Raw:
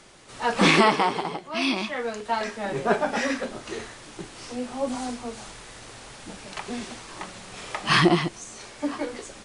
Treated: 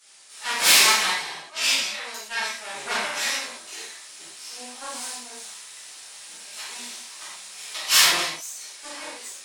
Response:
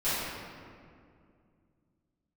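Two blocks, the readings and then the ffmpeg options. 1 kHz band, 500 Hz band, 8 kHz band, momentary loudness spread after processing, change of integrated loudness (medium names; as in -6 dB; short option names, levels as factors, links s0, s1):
-4.5 dB, -11.5 dB, +14.5 dB, 23 LU, +4.0 dB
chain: -filter_complex "[0:a]aeval=exprs='0.531*(cos(1*acos(clip(val(0)/0.531,-1,1)))-cos(1*PI/2))+0.237*(cos(6*acos(clip(val(0)/0.531,-1,1)))-cos(6*PI/2))':c=same,aderivative[s0];[1:a]atrim=start_sample=2205,atrim=end_sample=6174[s1];[s0][s1]afir=irnorm=-1:irlink=0"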